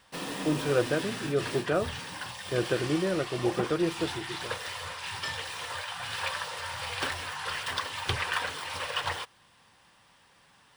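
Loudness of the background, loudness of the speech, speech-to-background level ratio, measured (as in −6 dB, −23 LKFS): −34.5 LKFS, −30.5 LKFS, 4.0 dB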